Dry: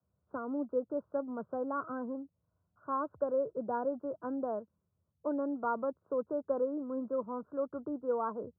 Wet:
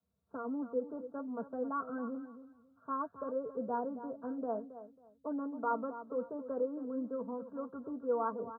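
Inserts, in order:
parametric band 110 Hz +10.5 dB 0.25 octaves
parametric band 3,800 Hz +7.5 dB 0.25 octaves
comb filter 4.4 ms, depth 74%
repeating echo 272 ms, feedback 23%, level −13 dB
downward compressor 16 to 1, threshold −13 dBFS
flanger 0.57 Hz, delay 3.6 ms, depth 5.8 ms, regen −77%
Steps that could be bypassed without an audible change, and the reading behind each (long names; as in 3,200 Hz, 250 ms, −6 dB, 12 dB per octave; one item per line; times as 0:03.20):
parametric band 3,800 Hz: nothing at its input above 1,500 Hz
downward compressor, threshold −13 dBFS: peak of its input −18.0 dBFS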